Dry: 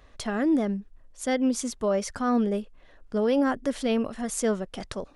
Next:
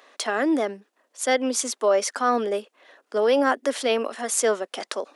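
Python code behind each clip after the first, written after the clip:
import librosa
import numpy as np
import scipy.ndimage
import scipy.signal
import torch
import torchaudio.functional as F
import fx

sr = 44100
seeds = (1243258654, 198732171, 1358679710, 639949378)

y = scipy.signal.sosfilt(scipy.signal.bessel(8, 480.0, 'highpass', norm='mag', fs=sr, output='sos'), x)
y = F.gain(torch.from_numpy(y), 8.0).numpy()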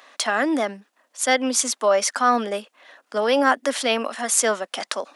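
y = fx.peak_eq(x, sr, hz=400.0, db=-10.0, octaves=0.81)
y = F.gain(torch.from_numpy(y), 5.0).numpy()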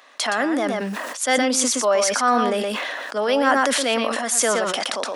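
y = x + 10.0 ** (-9.0 / 20.0) * np.pad(x, (int(119 * sr / 1000.0), 0))[:len(x)]
y = fx.sustainer(y, sr, db_per_s=21.0)
y = F.gain(torch.from_numpy(y), -1.0).numpy()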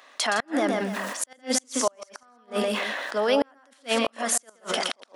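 y = x + 10.0 ** (-10.0 / 20.0) * np.pad(x, (int(162 * sr / 1000.0), 0))[:len(x)]
y = fx.gate_flip(y, sr, shuts_db=-9.0, range_db=-37)
y = F.gain(torch.from_numpy(y), -2.0).numpy()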